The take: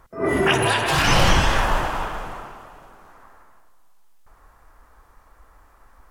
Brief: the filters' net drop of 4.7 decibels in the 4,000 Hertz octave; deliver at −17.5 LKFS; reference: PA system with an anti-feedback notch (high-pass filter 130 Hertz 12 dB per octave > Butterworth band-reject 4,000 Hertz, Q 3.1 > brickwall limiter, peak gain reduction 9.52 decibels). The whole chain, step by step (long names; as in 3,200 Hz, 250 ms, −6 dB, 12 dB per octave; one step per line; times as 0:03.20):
high-pass filter 130 Hz 12 dB per octave
Butterworth band-reject 4,000 Hz, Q 3.1
parametric band 4,000 Hz −6 dB
level +9 dB
brickwall limiter −8 dBFS